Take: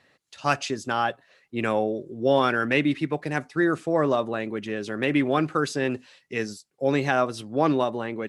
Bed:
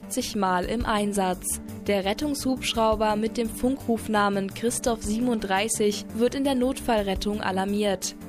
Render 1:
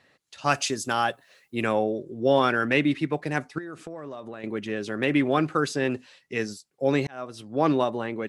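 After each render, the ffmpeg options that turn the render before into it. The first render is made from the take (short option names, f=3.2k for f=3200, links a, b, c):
-filter_complex "[0:a]asettb=1/sr,asplit=3[a][b][c];[a]atrim=end=0.544[d];[b]atrim=start=0.54:end=1.64,asetpts=PTS-STARTPTS,afade=t=in:d=0.004:c=qsin,afade=t=out:st=1.096:d=0.004:c=qsin,aemphasis=mode=production:type=50fm[e];[c]atrim=start=1.636[f];[d][e]acrossfade=d=0.004:c1=hsin:c2=qsin[g];[g][f]acrossfade=d=0.004:c1=qsin:c2=hsin,asettb=1/sr,asplit=3[h][i][j];[h]atrim=end=3.584[k];[i]atrim=start=3.58:end=4.44,asetpts=PTS-STARTPTS,afade=t=in:d=0.004:c=qsin,afade=t=out:st=0.856:d=0.004:c=qsin,acompressor=threshold=-33dB:ratio=16:attack=3.2:release=140:knee=1:detection=peak[l];[j]atrim=start=4.436[m];[k][l]acrossfade=d=0.004:c1=hsin:c2=qsin[n];[n][m]acrossfade=d=0.004:c1=qsin:c2=hsin,asplit=2[o][p];[o]atrim=end=7.07,asetpts=PTS-STARTPTS,afade=t=out:st=7.066:d=0.004:c=hsin[q];[p]atrim=start=7.07,asetpts=PTS-STARTPTS,afade=t=in:d=0.61[r];[q][r]concat=n=2:v=0:a=1"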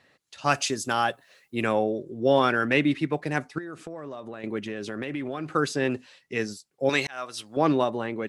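-filter_complex "[0:a]asettb=1/sr,asplit=3[a][b][c];[a]atrim=end=4.674[d];[b]atrim=start=4.67:end=5.54,asetpts=PTS-STARTPTS,afade=t=in:d=0.004:c=qsin,afade=t=out:st=0.866:d=0.004:c=qsin,acompressor=threshold=-28dB:ratio=6:attack=3.2:release=140:knee=1:detection=peak[e];[c]atrim=start=5.536[f];[d][e]acrossfade=d=0.004:c1=hsin:c2=qsin[g];[g][f]acrossfade=d=0.004:c1=qsin:c2=hsin,asettb=1/sr,asplit=3[h][i][j];[h]atrim=end=6.894[k];[i]atrim=start=6.89:end=7.57,asetpts=PTS-STARTPTS,afade=t=in:d=0.004:c=qsin,afade=t=out:st=0.676:d=0.004:c=qsin,tiltshelf=f=730:g=-9.5[l];[j]atrim=start=7.566[m];[k][l]acrossfade=d=0.004:c1=hsin:c2=qsin[n];[n][m]acrossfade=d=0.004:c1=qsin:c2=hsin"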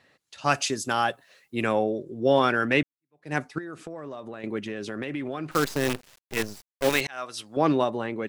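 -filter_complex "[0:a]asettb=1/sr,asplit=3[a][b][c];[a]atrim=end=5.514[d];[b]atrim=start=5.51:end=7.01,asetpts=PTS-STARTPTS,afade=t=in:d=0.004:c=qsin,afade=t=out:st=1.496:d=0.004:c=qsin,acrusher=bits=5:dc=4:mix=0:aa=0.000001[e];[c]atrim=start=7.006[f];[d][e]acrossfade=d=0.004:c1=hsin:c2=qsin[g];[g][f]acrossfade=d=0.004:c1=qsin:c2=hsin,asplit=2[h][i];[h]atrim=end=2.83,asetpts=PTS-STARTPTS,afade=t=out:st=2.826:d=0.004:c=hsin[j];[i]atrim=start=2.83,asetpts=PTS-STARTPTS,afade=t=in:d=0.5:c=exp[k];[j][k]concat=n=2:v=0:a=1"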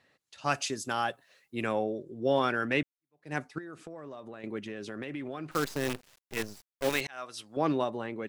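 -af "volume=-6dB"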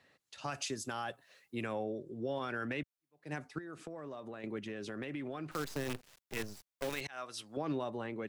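-filter_complex "[0:a]alimiter=limit=-22dB:level=0:latency=1:release=63,acrossover=split=120[a][b];[b]acompressor=threshold=-43dB:ratio=1.5[c];[a][c]amix=inputs=2:normalize=0"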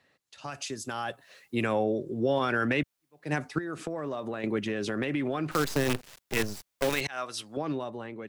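-af "dynaudnorm=f=260:g=9:m=11dB"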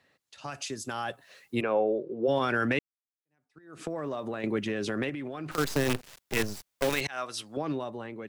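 -filter_complex "[0:a]asplit=3[a][b][c];[a]afade=t=out:st=1.6:d=0.02[d];[b]highpass=250,equalizer=f=260:t=q:w=4:g=-5,equalizer=f=490:t=q:w=4:g=5,equalizer=f=1.9k:t=q:w=4:g=-9,equalizer=f=3.4k:t=q:w=4:g=-9,lowpass=f=3.6k:w=0.5412,lowpass=f=3.6k:w=1.3066,afade=t=in:st=1.6:d=0.02,afade=t=out:st=2.27:d=0.02[e];[c]afade=t=in:st=2.27:d=0.02[f];[d][e][f]amix=inputs=3:normalize=0,asettb=1/sr,asplit=3[g][h][i];[g]atrim=end=5.094[j];[h]atrim=start=5.09:end=5.58,asetpts=PTS-STARTPTS,afade=t=in:d=0.004:c=qsin,afade=t=out:st=0.486:d=0.004:c=qsin,acompressor=threshold=-33dB:ratio=6:attack=3.2:release=140:knee=1:detection=peak[k];[i]atrim=start=5.576[l];[j][k]acrossfade=d=0.004:c1=hsin:c2=qsin[m];[m][l]acrossfade=d=0.004:c1=qsin:c2=hsin,asplit=2[n][o];[n]atrim=end=2.79,asetpts=PTS-STARTPTS,afade=t=out:st=2.786:d=0.004:c=hsin[p];[o]atrim=start=2.79,asetpts=PTS-STARTPTS,afade=t=in:d=1.05:c=exp[q];[p][q]concat=n=2:v=0:a=1"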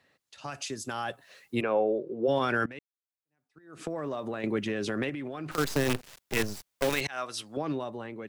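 -filter_complex "[0:a]asplit=2[a][b];[a]atrim=end=2.66,asetpts=PTS-STARTPTS,afade=t=out:st=2.656:d=0.004:c=hsin:silence=0.0891251[c];[b]atrim=start=2.66,asetpts=PTS-STARTPTS,afade=t=in:d=1.17:silence=0.0891251[d];[c][d]concat=n=2:v=0:a=1"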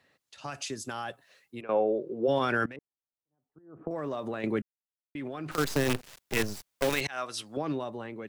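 -filter_complex "[0:a]asettb=1/sr,asplit=3[a][b][c];[a]atrim=end=2.764[d];[b]atrim=start=2.76:end=3.91,asetpts=PTS-STARTPTS,afade=t=in:d=0.004:c=qsin,afade=t=out:st=1.146:d=0.004:c=qsin,lowpass=f=1k:w=0.5412,lowpass=f=1k:w=1.3066[e];[c]atrim=start=3.906[f];[d][e]acrossfade=d=0.004:c1=hsin:c2=qsin[g];[g][f]acrossfade=d=0.004:c1=qsin:c2=hsin,asplit=4[h][i][j][k];[h]atrim=end=1.69,asetpts=PTS-STARTPTS,afade=t=out:st=0.71:d=0.98:silence=0.158489[l];[i]atrim=start=1.69:end=4.62,asetpts=PTS-STARTPTS,afade=t=in:d=0.004:c=hsin:silence=0.158489,afade=t=out:st=2.926:d=0.004:c=hsin[m];[j]atrim=start=4.62:end=5.15,asetpts=PTS-STARTPTS,volume=0[n];[k]atrim=start=5.15,asetpts=PTS-STARTPTS,afade=t=in:d=0.004:c=hsin[o];[l][m][n][o]concat=n=4:v=0:a=1"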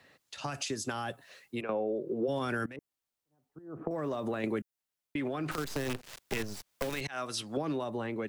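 -filter_complex "[0:a]acrossover=split=330|7400[a][b][c];[a]acompressor=threshold=-43dB:ratio=4[d];[b]acompressor=threshold=-41dB:ratio=4[e];[c]acompressor=threshold=-53dB:ratio=4[f];[d][e][f]amix=inputs=3:normalize=0,asplit=2[g][h];[h]alimiter=level_in=4.5dB:limit=-24dB:level=0:latency=1:release=444,volume=-4.5dB,volume=1dB[i];[g][i]amix=inputs=2:normalize=0"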